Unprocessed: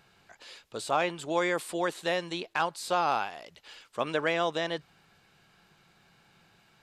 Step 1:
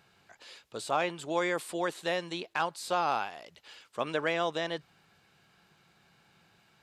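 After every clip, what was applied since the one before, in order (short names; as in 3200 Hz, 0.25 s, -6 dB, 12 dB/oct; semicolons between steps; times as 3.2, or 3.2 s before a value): HPF 47 Hz; gain -2 dB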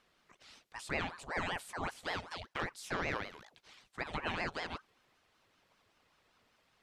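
ring modulator with a swept carrier 840 Hz, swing 70%, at 5.2 Hz; gain -4.5 dB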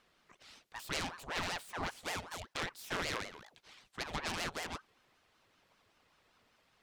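self-modulated delay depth 0.28 ms; gain +1 dB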